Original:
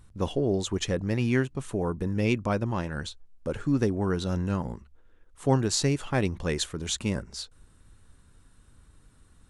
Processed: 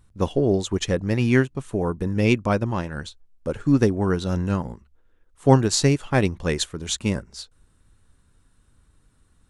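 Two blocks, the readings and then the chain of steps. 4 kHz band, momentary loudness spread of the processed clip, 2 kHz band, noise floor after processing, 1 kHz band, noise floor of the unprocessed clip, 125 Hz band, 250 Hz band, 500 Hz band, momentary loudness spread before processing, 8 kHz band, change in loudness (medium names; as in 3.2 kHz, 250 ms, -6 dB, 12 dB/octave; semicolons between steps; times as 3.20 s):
+4.0 dB, 13 LU, +6.0 dB, -61 dBFS, +6.0 dB, -58 dBFS, +5.5 dB, +5.5 dB, +6.0 dB, 11 LU, +4.0 dB, +6.0 dB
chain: upward expansion 1.5:1, over -42 dBFS; trim +8.5 dB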